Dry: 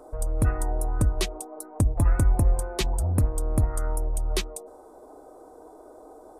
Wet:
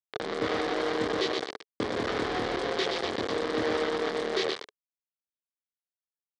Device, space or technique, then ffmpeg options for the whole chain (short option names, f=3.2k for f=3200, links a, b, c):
hand-held game console: -filter_complex "[0:a]asettb=1/sr,asplit=3[a][b][c];[a]atrim=end=2.774[d];[b]atrim=start=2.77:end=3.29,asetpts=PTS-STARTPTS,afade=t=in:d=0.004:c=qsin,afade=t=out:st=0.516:d=0.004:c=qsin,lowshelf=f=260:g=-3.5[e];[c]atrim=start=3.286[f];[d][e]acrossfade=d=0.004:c1=hsin:c2=qsin[g];[g][f]acrossfade=d=0.004:c1=qsin:c2=hsin,asplit=2[h][i];[i]adelay=26,volume=-2.5dB[j];[h][j]amix=inputs=2:normalize=0,aecho=1:1:122|244|366|488|610|732|854|976:0.596|0.345|0.2|0.116|0.0674|0.0391|0.0227|0.0132,acrusher=bits=3:mix=0:aa=0.000001,highpass=420,equalizer=f=430:t=q:w=4:g=6,equalizer=f=640:t=q:w=4:g=-6,equalizer=f=910:t=q:w=4:g=-7,equalizer=f=1.4k:t=q:w=4:g=-5,equalizer=f=2.6k:t=q:w=4:g=-9,lowpass=f=4.2k:w=0.5412,lowpass=f=4.2k:w=1.3066,volume=1dB"